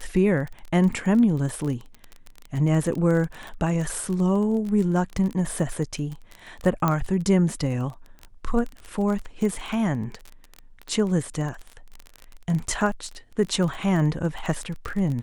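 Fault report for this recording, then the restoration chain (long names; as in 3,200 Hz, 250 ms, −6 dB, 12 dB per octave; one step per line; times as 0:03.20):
surface crackle 24 per second −28 dBFS
0:06.88: click −9 dBFS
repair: click removal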